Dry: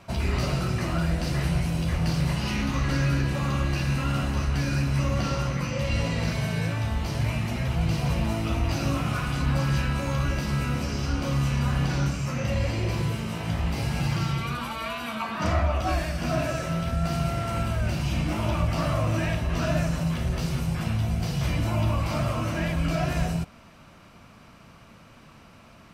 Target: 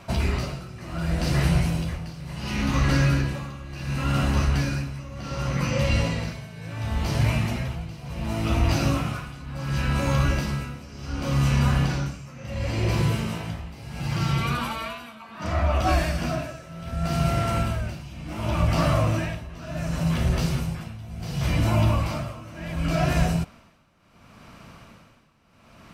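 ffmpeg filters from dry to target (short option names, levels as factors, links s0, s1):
-af "tremolo=f=0.69:d=0.87,volume=1.68"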